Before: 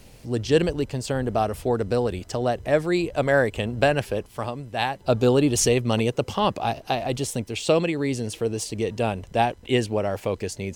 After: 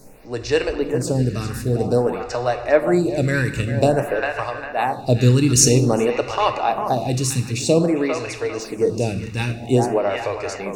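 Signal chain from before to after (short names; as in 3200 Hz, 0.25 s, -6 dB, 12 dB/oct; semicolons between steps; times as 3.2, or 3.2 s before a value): Butterworth band-stop 3200 Hz, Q 5; bell 6300 Hz +4.5 dB 0.63 oct; narrowing echo 0.401 s, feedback 43%, band-pass 1500 Hz, level -5 dB; on a send at -7 dB: reverb RT60 1.3 s, pre-delay 6 ms; on the sum: photocell phaser 0.51 Hz; gain +5.5 dB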